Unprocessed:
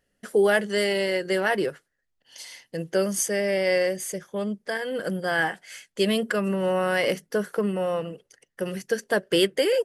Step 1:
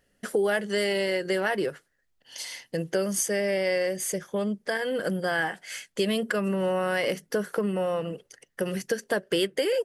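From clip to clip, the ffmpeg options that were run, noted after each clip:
-af "acompressor=threshold=0.0282:ratio=2.5,volume=1.68"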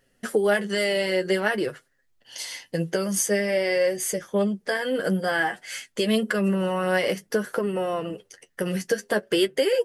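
-af "flanger=delay=7.3:depth=4.6:regen=34:speed=0.52:shape=triangular,volume=2.11"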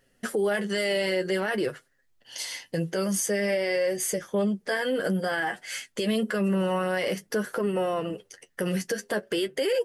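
-af "alimiter=limit=0.119:level=0:latency=1:release=28"

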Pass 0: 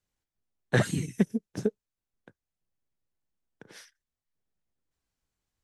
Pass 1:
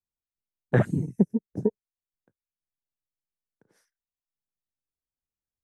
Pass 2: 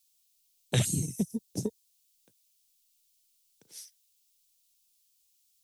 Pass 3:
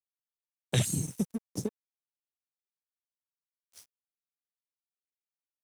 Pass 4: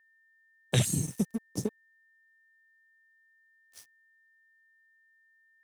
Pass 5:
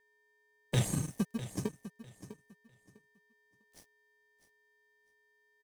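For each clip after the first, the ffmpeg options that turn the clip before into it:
-af "equalizer=f=3200:w=0.82:g=-14,afwtdn=0.0126,volume=1.5"
-filter_complex "[0:a]acrossover=split=130|3000[s0][s1][s2];[s1]acompressor=threshold=0.0282:ratio=6[s3];[s0][s3][s2]amix=inputs=3:normalize=0,aexciter=amount=9.9:drive=7.6:freq=2500"
-af "aeval=exprs='sgn(val(0))*max(abs(val(0))-0.00562,0)':c=same"
-af "aeval=exprs='val(0)+0.000562*sin(2*PI*1800*n/s)':c=same,volume=1.19"
-filter_complex "[0:a]asplit=2[s0][s1];[s1]acrusher=samples=32:mix=1:aa=0.000001,volume=0.631[s2];[s0][s2]amix=inputs=2:normalize=0,aecho=1:1:651|1302|1953:0.211|0.0465|0.0102,volume=0.422"

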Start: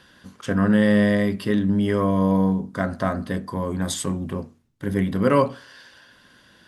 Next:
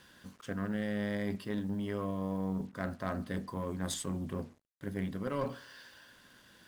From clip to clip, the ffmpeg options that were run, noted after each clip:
-af "areverse,acompressor=threshold=0.0447:ratio=5,areverse,aeval=exprs='0.133*(cos(1*acos(clip(val(0)/0.133,-1,1)))-cos(1*PI/2))+0.0335*(cos(2*acos(clip(val(0)/0.133,-1,1)))-cos(2*PI/2))+0.00422*(cos(8*acos(clip(val(0)/0.133,-1,1)))-cos(8*PI/2))':c=same,acrusher=bits=8:mix=0:aa=0.5,volume=0.473"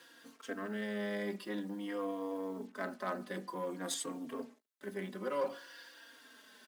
-filter_complex "[0:a]areverse,acompressor=mode=upward:threshold=0.00224:ratio=2.5,areverse,highpass=f=250:w=0.5412,highpass=f=250:w=1.3066,asplit=2[s0][s1];[s1]adelay=3.8,afreqshift=-0.51[s2];[s0][s2]amix=inputs=2:normalize=1,volume=1.41"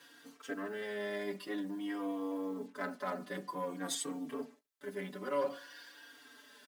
-af "aecho=1:1:6.9:1,volume=0.75"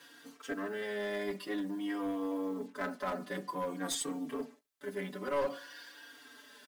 -af "aeval=exprs='clip(val(0),-1,0.0224)':c=same,volume=1.33"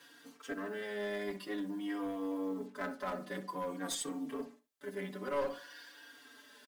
-filter_complex "[0:a]asplit=2[s0][s1];[s1]adelay=63,lowpass=f=2000:p=1,volume=0.251,asplit=2[s2][s3];[s3]adelay=63,lowpass=f=2000:p=1,volume=0.17[s4];[s0][s2][s4]amix=inputs=3:normalize=0,volume=0.75"

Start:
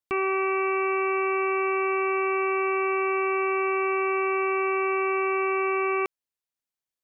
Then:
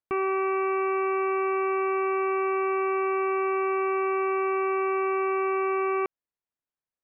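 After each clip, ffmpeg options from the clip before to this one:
-af "lowpass=1800"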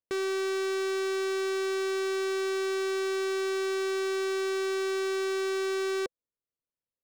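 -af "adynamicsmooth=sensitivity=2.5:basefreq=880,aeval=exprs='0.0447*(abs(mod(val(0)/0.0447+3,4)-2)-1)':c=same,equalizer=f=500:t=o:w=0.33:g=7,equalizer=f=800:t=o:w=0.33:g=-7,equalizer=f=2000:t=o:w=0.33:g=5"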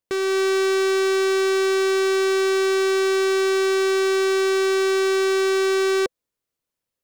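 -af "dynaudnorm=f=190:g=3:m=1.5,volume=2.11"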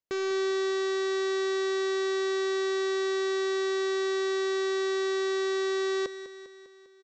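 -filter_complex "[0:a]asoftclip=type=hard:threshold=0.106,asplit=2[s0][s1];[s1]aecho=0:1:200|400|600|800|1000|1200|1400:0.237|0.142|0.0854|0.0512|0.0307|0.0184|0.0111[s2];[s0][s2]amix=inputs=2:normalize=0,aresample=16000,aresample=44100,volume=0.447"

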